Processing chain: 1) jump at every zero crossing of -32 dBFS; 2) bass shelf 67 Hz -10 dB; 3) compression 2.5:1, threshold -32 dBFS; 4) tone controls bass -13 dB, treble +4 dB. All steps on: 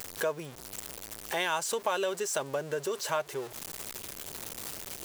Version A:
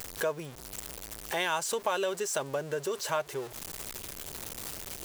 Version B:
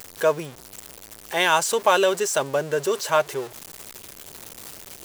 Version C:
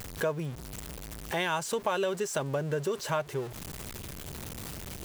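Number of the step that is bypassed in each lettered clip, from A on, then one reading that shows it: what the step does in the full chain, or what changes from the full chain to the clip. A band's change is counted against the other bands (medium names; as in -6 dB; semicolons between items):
2, 125 Hz band +2.0 dB; 3, mean gain reduction 4.5 dB; 4, 125 Hz band +11.5 dB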